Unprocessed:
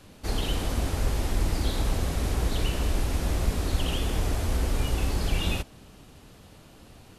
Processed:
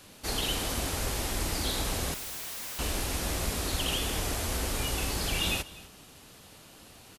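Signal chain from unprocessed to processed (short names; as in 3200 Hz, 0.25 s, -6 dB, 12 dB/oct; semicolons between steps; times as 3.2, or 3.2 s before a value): tilt +2 dB/oct; 2.14–2.79 wrapped overs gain 34 dB; on a send: echo 0.247 s -19.5 dB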